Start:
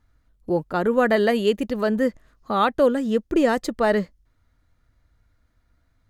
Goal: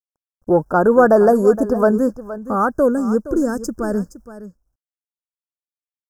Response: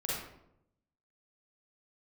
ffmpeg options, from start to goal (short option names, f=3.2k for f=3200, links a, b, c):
-af "agate=range=-21dB:threshold=-53dB:ratio=16:detection=peak,asetnsamples=n=441:p=0,asendcmd='1.91 equalizer g -5;3.36 equalizer g -14',equalizer=f=790:w=0.72:g=4,acontrast=54,acrusher=bits=10:mix=0:aa=0.000001,asuperstop=centerf=2900:order=20:qfactor=0.84,aecho=1:1:468:0.188"